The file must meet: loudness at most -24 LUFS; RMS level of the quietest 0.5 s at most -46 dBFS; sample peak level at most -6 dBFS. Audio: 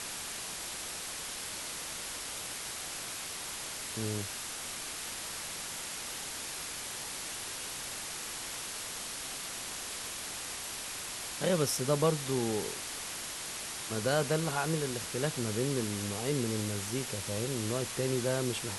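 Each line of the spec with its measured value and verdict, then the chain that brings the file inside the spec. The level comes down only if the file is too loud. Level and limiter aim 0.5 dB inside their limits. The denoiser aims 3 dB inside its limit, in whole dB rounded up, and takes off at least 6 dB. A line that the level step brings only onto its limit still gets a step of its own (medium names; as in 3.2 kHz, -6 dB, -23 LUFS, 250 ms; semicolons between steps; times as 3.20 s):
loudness -34.5 LUFS: pass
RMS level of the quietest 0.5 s -40 dBFS: fail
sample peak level -14.5 dBFS: pass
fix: noise reduction 9 dB, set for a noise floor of -40 dBFS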